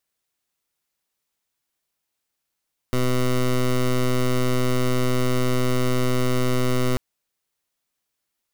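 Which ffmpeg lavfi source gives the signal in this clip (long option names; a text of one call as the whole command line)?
ffmpeg -f lavfi -i "aevalsrc='0.1*(2*lt(mod(126*t,1),0.15)-1)':duration=4.04:sample_rate=44100" out.wav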